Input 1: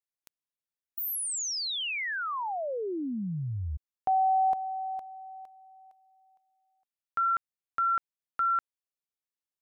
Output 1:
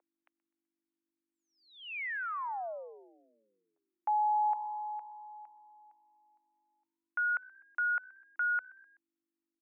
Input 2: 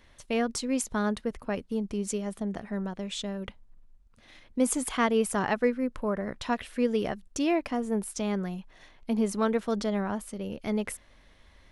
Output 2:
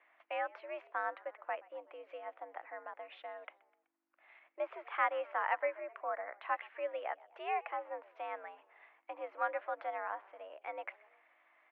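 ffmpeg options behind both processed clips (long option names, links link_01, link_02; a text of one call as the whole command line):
ffmpeg -i in.wav -filter_complex "[0:a]asplit=4[link_01][link_02][link_03][link_04];[link_02]adelay=126,afreqshift=61,volume=-23.5dB[link_05];[link_03]adelay=252,afreqshift=122,volume=-29dB[link_06];[link_04]adelay=378,afreqshift=183,volume=-34.5dB[link_07];[link_01][link_05][link_06][link_07]amix=inputs=4:normalize=0,aeval=exprs='val(0)+0.00562*(sin(2*PI*50*n/s)+sin(2*PI*2*50*n/s)/2+sin(2*PI*3*50*n/s)/3+sin(2*PI*4*50*n/s)/4+sin(2*PI*5*50*n/s)/5)':channel_layout=same,highpass=frequency=540:width_type=q:width=0.5412,highpass=frequency=540:width_type=q:width=1.307,lowpass=frequency=2400:width_type=q:width=0.5176,lowpass=frequency=2400:width_type=q:width=0.7071,lowpass=frequency=2400:width_type=q:width=1.932,afreqshift=84,volume=-4dB" out.wav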